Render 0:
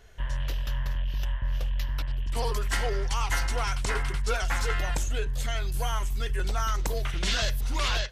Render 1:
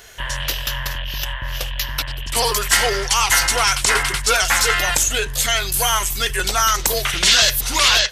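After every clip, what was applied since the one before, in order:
spectral tilt +3 dB per octave
in parallel at 0 dB: brickwall limiter −21.5 dBFS, peak gain reduction 9.5 dB
on the sum: level +7.5 dB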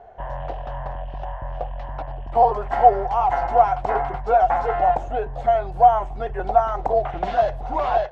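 low-pass with resonance 740 Hz, resonance Q 9.1
level −4 dB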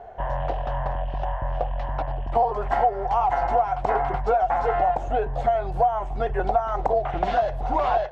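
downward compressor 5 to 1, threshold −22 dBFS, peak gain reduction 14 dB
level +3.5 dB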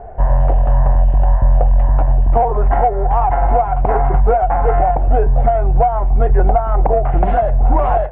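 spectral tilt −3 dB per octave
in parallel at −9 dB: soft clipping −16 dBFS, distortion −13 dB
on the sum: low-pass filter 2,700 Hz 24 dB per octave
level +2.5 dB

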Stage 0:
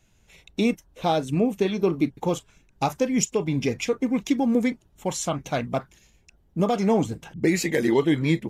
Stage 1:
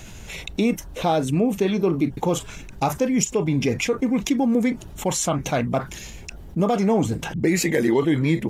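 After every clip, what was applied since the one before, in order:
dynamic equaliser 4,300 Hz, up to −4 dB, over −42 dBFS, Q 0.97
envelope flattener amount 50%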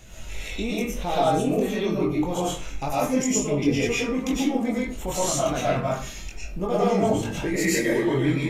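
multi-voice chorus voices 4, 0.28 Hz, delay 22 ms, depth 1.8 ms
convolution reverb RT60 0.45 s, pre-delay 75 ms, DRR −6.5 dB
level −4.5 dB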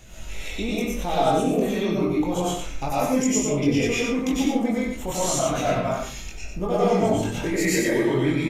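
single-tap delay 93 ms −6 dB

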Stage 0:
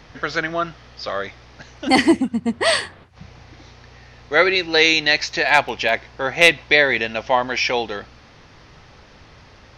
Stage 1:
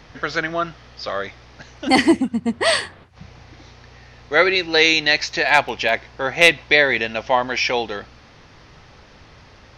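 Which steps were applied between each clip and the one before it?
no processing that can be heard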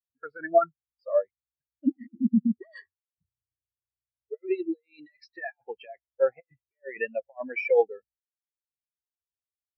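compressor whose output falls as the input rises −21 dBFS, ratio −0.5
every bin expanded away from the loudest bin 4 to 1
level −6 dB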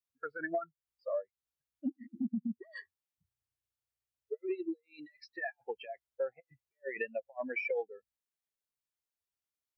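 downward compressor 6 to 1, threshold −33 dBFS, peak gain reduction 18 dB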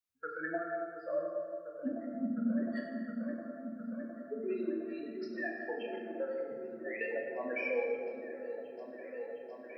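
echo whose low-pass opens from repeat to repeat 711 ms, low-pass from 400 Hz, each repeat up 1 octave, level −6 dB
dense smooth reverb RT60 2.2 s, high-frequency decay 0.5×, pre-delay 0 ms, DRR −1.5 dB
level −2.5 dB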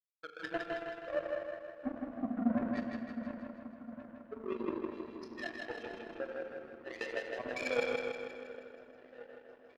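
power curve on the samples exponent 2
repeating echo 159 ms, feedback 55%, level −3.5 dB
level +5.5 dB

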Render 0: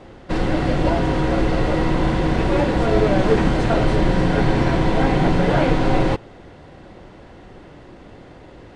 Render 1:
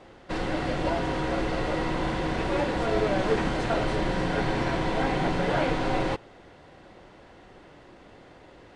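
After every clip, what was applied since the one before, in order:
low-shelf EQ 360 Hz −8 dB
level −4.5 dB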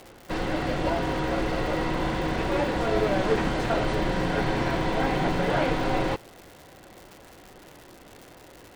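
surface crackle 250 per second −38 dBFS
level +1 dB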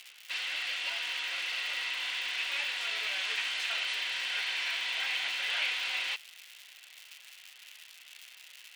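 high-pass with resonance 2,700 Hz, resonance Q 2.5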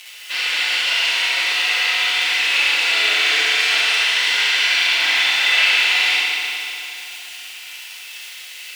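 feedback delay network reverb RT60 2.9 s, high-frequency decay 0.95×, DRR −8.5 dB
level +8 dB

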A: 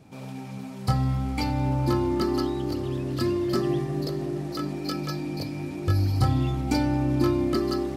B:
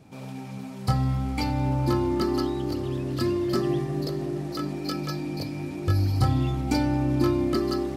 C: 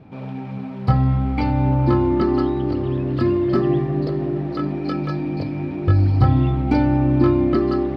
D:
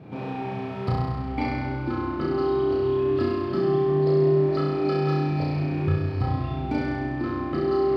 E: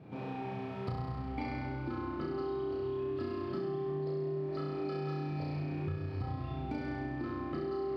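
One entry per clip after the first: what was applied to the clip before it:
no processing that can be heard
high-frequency loss of the air 370 metres; level +7.5 dB
downward compressor 4 to 1, threshold −25 dBFS, peak gain reduction 13.5 dB; high-pass filter 73 Hz; on a send: flutter between parallel walls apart 5.7 metres, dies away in 1.4 s
downward compressor, threshold −25 dBFS, peak gain reduction 8.5 dB; level −8 dB

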